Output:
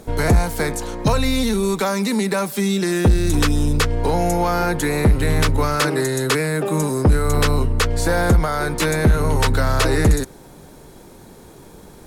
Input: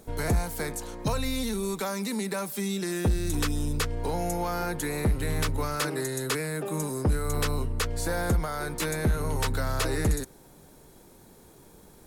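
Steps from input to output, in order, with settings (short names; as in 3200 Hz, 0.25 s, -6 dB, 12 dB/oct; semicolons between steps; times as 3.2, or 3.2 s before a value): high shelf 8400 Hz -8 dB; in parallel at -10 dB: one-sided clip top -24.5 dBFS, bottom -20.5 dBFS; on the sum: gain +8.5 dB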